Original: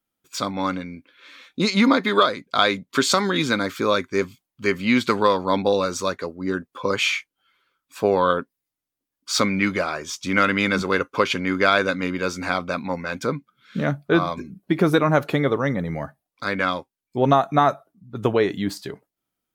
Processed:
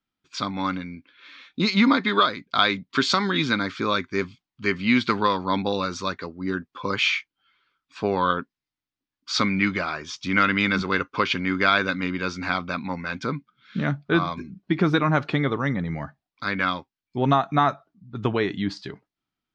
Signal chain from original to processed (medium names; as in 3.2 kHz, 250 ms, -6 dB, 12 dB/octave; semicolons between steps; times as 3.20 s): low-pass 5.2 kHz 24 dB/octave; peaking EQ 530 Hz -8.5 dB 0.91 oct